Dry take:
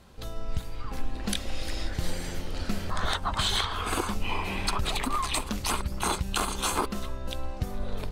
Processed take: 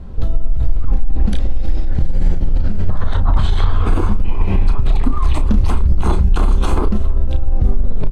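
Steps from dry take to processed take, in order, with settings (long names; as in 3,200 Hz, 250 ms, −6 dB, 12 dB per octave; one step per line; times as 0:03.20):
spectral tilt −4.5 dB per octave
mains-hum notches 50/100 Hz
in parallel at −1 dB: compressor whose output falls as the input rises −11 dBFS
on the sum: brickwall limiter −6 dBFS, peak gain reduction 12 dB
double-tracking delay 33 ms −9.5 dB
on a send: single-tap delay 326 ms −21 dB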